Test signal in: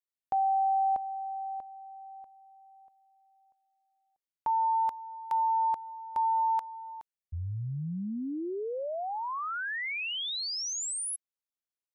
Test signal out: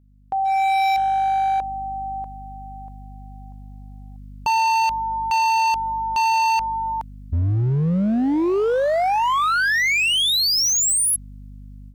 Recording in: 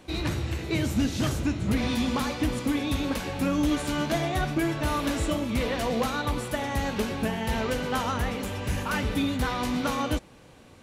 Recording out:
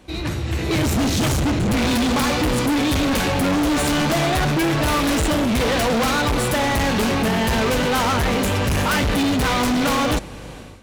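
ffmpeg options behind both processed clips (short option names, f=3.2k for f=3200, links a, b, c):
-af "aeval=exprs='val(0)+0.00178*(sin(2*PI*50*n/s)+sin(2*PI*2*50*n/s)/2+sin(2*PI*3*50*n/s)/3+sin(2*PI*4*50*n/s)/4+sin(2*PI*5*50*n/s)/5)':c=same,dynaudnorm=f=440:g=3:m=16dB,asoftclip=type=hard:threshold=-19dB,volume=1.5dB"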